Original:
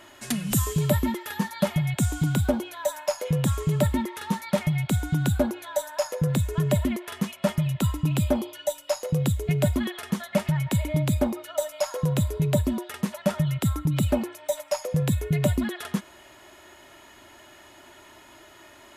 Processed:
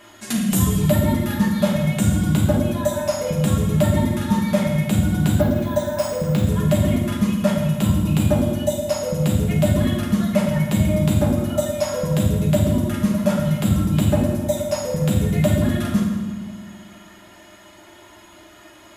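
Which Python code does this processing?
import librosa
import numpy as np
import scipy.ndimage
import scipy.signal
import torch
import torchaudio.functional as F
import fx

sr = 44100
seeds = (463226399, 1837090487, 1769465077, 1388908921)

y = fx.dereverb_blind(x, sr, rt60_s=0.64)
y = fx.rev_fdn(y, sr, rt60_s=1.4, lf_ratio=1.55, hf_ratio=0.8, size_ms=29.0, drr_db=-3.5)
y = fx.resample_bad(y, sr, factor=3, down='filtered', up='hold', at=(5.41, 6.47))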